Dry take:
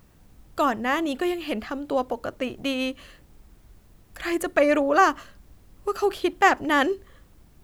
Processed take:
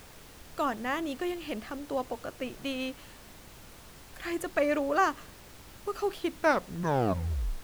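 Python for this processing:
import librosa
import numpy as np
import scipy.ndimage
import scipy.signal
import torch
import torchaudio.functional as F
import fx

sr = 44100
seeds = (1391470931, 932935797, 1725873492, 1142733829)

y = fx.tape_stop_end(x, sr, length_s=1.43)
y = fx.dmg_noise_colour(y, sr, seeds[0], colour='pink', level_db=-43.0)
y = F.gain(torch.from_numpy(y), -7.5).numpy()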